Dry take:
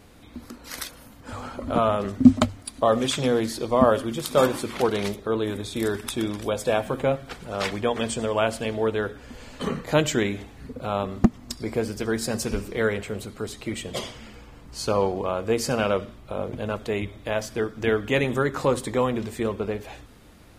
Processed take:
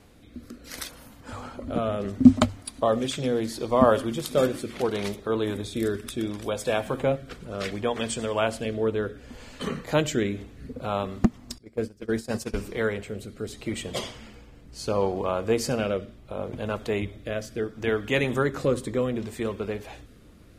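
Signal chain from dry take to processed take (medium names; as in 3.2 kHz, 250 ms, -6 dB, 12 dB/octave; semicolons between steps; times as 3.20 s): rotary cabinet horn 0.7 Hz; 11.58–12.59 s: gate -27 dBFS, range -20 dB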